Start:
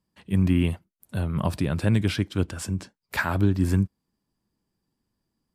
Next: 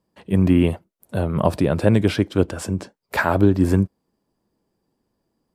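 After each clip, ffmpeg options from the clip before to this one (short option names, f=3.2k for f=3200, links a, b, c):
-af "equalizer=f=530:t=o:w=1.9:g=11.5,volume=1.5dB"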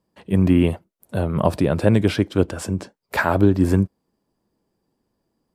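-af anull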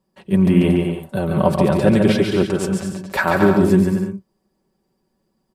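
-filter_complex "[0:a]aecho=1:1:5.3:0.62,asplit=2[a][b];[b]aecho=0:1:140|231|290.2|328.6|353.6:0.631|0.398|0.251|0.158|0.1[c];[a][c]amix=inputs=2:normalize=0"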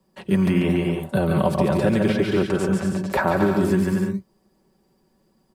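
-filter_complex "[0:a]acrossover=split=1000|2300[a][b][c];[a]acompressor=threshold=-24dB:ratio=4[d];[b]acompressor=threshold=-39dB:ratio=4[e];[c]acompressor=threshold=-47dB:ratio=4[f];[d][e][f]amix=inputs=3:normalize=0,acrossover=split=110|930|2600[g][h][i][j];[g]acrusher=samples=19:mix=1:aa=0.000001:lfo=1:lforange=19:lforate=0.59[k];[k][h][i][j]amix=inputs=4:normalize=0,volume=5.5dB"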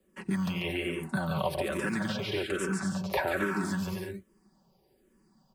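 -filter_complex "[0:a]acrossover=split=1000[a][b];[a]acompressor=threshold=-28dB:ratio=5[c];[c][b]amix=inputs=2:normalize=0,asplit=2[d][e];[e]afreqshift=-1.2[f];[d][f]amix=inputs=2:normalize=1"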